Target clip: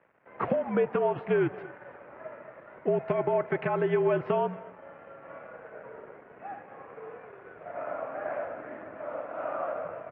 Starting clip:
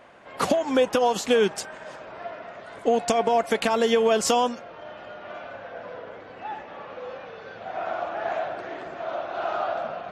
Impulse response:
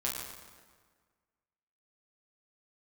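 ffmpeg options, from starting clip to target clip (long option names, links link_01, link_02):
-filter_complex "[0:a]aecho=1:1:231:0.112,asplit=2[link_01][link_02];[1:a]atrim=start_sample=2205[link_03];[link_02][link_03]afir=irnorm=-1:irlink=0,volume=-23dB[link_04];[link_01][link_04]amix=inputs=2:normalize=0,aeval=exprs='sgn(val(0))*max(abs(val(0))-0.00335,0)':channel_layout=same,highpass=frequency=150:width_type=q:width=0.5412,highpass=frequency=150:width_type=q:width=1.307,lowpass=frequency=2300:width_type=q:width=0.5176,lowpass=frequency=2300:width_type=q:width=0.7071,lowpass=frequency=2300:width_type=q:width=1.932,afreqshift=-57,volume=-5.5dB"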